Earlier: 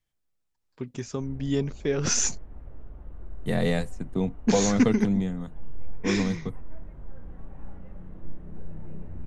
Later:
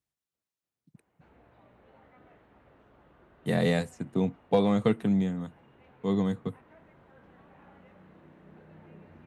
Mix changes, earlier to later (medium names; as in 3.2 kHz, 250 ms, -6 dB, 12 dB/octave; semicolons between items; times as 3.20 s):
first voice: muted; background: add tilt EQ +3.5 dB/octave; master: add high-pass 99 Hz 12 dB/octave